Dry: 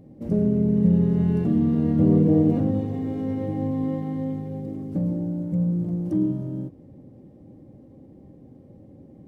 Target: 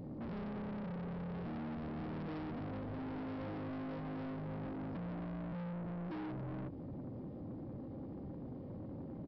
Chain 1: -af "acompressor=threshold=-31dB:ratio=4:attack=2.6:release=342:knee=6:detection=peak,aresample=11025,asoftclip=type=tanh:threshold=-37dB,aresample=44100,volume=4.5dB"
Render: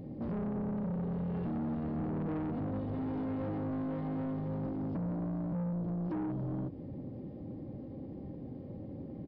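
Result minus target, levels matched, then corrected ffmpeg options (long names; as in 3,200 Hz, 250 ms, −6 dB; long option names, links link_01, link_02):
soft clipping: distortion −5 dB
-af "acompressor=threshold=-31dB:ratio=4:attack=2.6:release=342:knee=6:detection=peak,aresample=11025,asoftclip=type=tanh:threshold=-45.5dB,aresample=44100,volume=4.5dB"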